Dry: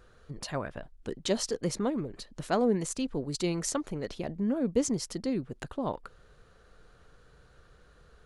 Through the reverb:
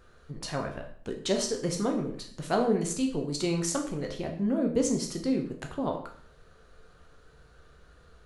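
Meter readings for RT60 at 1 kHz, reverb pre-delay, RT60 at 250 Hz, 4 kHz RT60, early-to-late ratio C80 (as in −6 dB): 0.55 s, 10 ms, 0.55 s, 0.50 s, 11.5 dB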